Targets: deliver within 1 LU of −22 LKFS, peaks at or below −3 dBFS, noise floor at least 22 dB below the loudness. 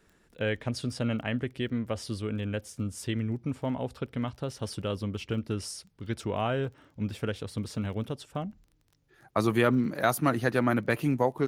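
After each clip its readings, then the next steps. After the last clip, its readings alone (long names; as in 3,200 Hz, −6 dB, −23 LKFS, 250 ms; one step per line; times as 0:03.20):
crackle rate 22 per second; integrated loudness −31.0 LKFS; sample peak −10.0 dBFS; target loudness −22.0 LKFS
→ click removal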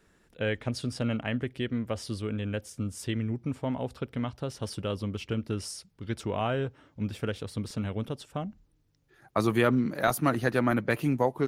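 crackle rate 0 per second; integrated loudness −31.0 LKFS; sample peak −10.0 dBFS; target loudness −22.0 LKFS
→ level +9 dB
brickwall limiter −3 dBFS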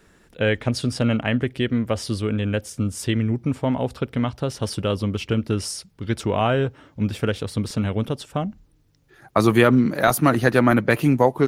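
integrated loudness −22.5 LKFS; sample peak −3.0 dBFS; background noise floor −58 dBFS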